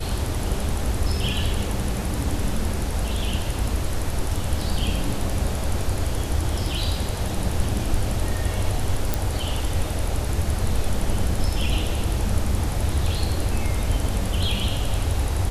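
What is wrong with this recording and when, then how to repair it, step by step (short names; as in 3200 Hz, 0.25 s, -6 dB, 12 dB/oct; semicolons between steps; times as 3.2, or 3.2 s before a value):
9.14 pop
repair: de-click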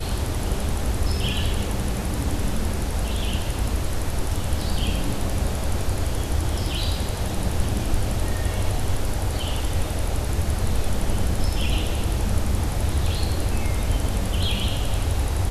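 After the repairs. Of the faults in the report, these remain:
none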